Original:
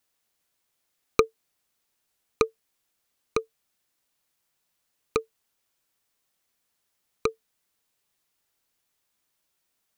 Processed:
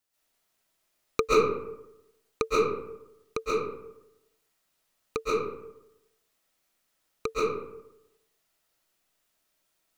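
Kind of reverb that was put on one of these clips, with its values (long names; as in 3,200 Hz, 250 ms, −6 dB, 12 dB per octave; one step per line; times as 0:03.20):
comb and all-pass reverb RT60 0.89 s, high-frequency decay 0.5×, pre-delay 95 ms, DRR −9 dB
level −6 dB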